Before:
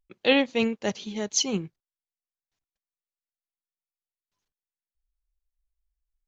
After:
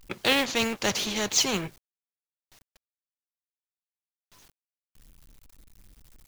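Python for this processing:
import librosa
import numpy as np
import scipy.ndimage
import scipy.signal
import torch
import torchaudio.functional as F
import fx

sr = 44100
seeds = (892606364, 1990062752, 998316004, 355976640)

y = fx.law_mismatch(x, sr, coded='mu')
y = fx.spectral_comp(y, sr, ratio=2.0)
y = y * 10.0 ** (-1.5 / 20.0)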